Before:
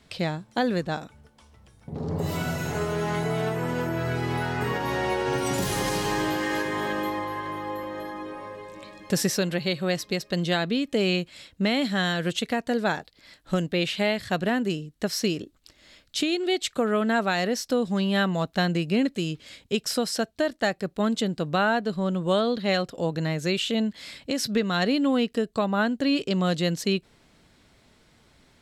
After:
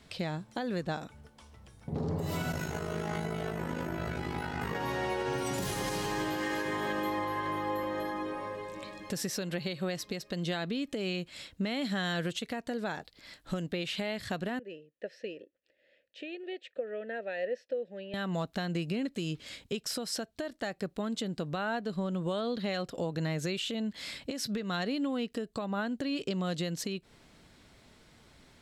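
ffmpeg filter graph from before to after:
-filter_complex "[0:a]asettb=1/sr,asplit=3[s0][s1][s2];[s0]atrim=end=2.524[s3];[s1]atrim=start=2.52:end=4.75,asetpts=PTS-STARTPTS,afade=t=in:d=0.004:c=qsin,afade=t=out:st=2.226:d=0.004:c=qsin,tremolo=f=52:d=0.919,asplit=2[s4][s5];[s5]adelay=13,volume=0.501[s6];[s4][s6]amix=inputs=2:normalize=0,atrim=end_sample=98343[s7];[s2]atrim=start=4.746[s8];[s3][s7]acrossfade=d=0.004:c1=hsin:c2=qsin[s9];[s9][s8]acrossfade=d=0.004:c1=qsin:c2=hsin,asettb=1/sr,asplit=3[s10][s11][s12];[s10]atrim=end=14.594[s13];[s11]atrim=start=14.59:end=18.14,asetpts=PTS-STARTPTS,afade=t=in:d=0.004:c=qsin,afade=t=out:st=3.546:d=0.004:c=qsin,asplit=3[s14][s15][s16];[s14]bandpass=f=530:t=q:w=8,volume=1[s17];[s15]bandpass=f=1840:t=q:w=8,volume=0.501[s18];[s16]bandpass=f=2480:t=q:w=8,volume=0.355[s19];[s17][s18][s19]amix=inputs=3:normalize=0,highshelf=f=3800:g=-9.5[s20];[s12]atrim=start=18.136[s21];[s13][s20]acrossfade=d=0.004:c1=hsin:c2=qsin[s22];[s22][s21]acrossfade=d=0.004:c1=qsin:c2=hsin,acompressor=threshold=0.0501:ratio=6,alimiter=limit=0.0631:level=0:latency=1:release=276"

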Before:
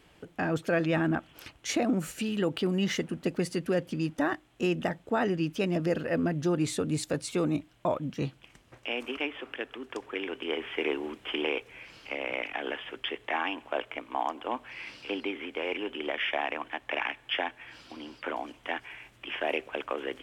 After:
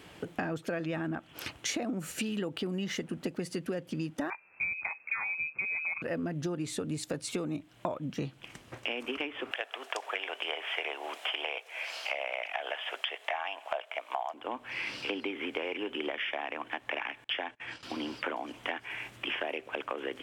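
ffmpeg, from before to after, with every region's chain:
-filter_complex "[0:a]asettb=1/sr,asplit=3[s0][s1][s2];[s0]atrim=end=4.304[s3];[s1]atrim=start=4.3:end=6.02,asetpts=PTS-STARTPTS,afade=t=in:d=0.004:c=qsin,afade=t=out:st=1.716:d=0.004:c=qsin,equalizer=f=760:t=o:w=0.53:g=-7.5,lowpass=f=2300:t=q:w=0.5098,lowpass=f=2300:t=q:w=0.6013,lowpass=f=2300:t=q:w=0.9,lowpass=f=2300:t=q:w=2.563,afreqshift=-2700[s4];[s2]atrim=start=6.016[s5];[s3][s4]acrossfade=d=0.004:c1=hsin:c2=qsin[s6];[s6][s5]acrossfade=d=0.004:c1=qsin:c2=hsin,asettb=1/sr,asplit=3[s7][s8][s9];[s7]atrim=end=9.514[s10];[s8]atrim=start=9.51:end=14.34,asetpts=PTS-STARTPTS,afade=t=in:d=0.004:c=qsin,afade=t=out:st=4.826:d=0.004:c=qsin,highpass=f=660:t=q:w=4.6,tiltshelf=f=1400:g=-6[s11];[s9]atrim=start=14.336[s12];[s10][s11]acrossfade=d=0.004:c1=hsin:c2=qsin[s13];[s13][s12]acrossfade=d=0.004:c1=qsin:c2=hsin,asettb=1/sr,asplit=3[s14][s15][s16];[s14]atrim=end=17.244[s17];[s15]atrim=start=17.24:end=17.83,asetpts=PTS-STARTPTS,afade=t=in:d=0.004:c=qsin,afade=t=out:st=0.586:d=0.004:c=qsin,lowpass=f=9800:w=0.5412,lowpass=f=9800:w=1.3066,agate=range=0.0501:threshold=0.00316:ratio=16:release=100:detection=peak[s18];[s16]atrim=start=17.826[s19];[s17][s18]acrossfade=d=0.004:c1=hsin:c2=qsin[s20];[s20][s19]acrossfade=d=0.004:c1=qsin:c2=hsin,highpass=80,acompressor=threshold=0.0112:ratio=12,volume=2.51"

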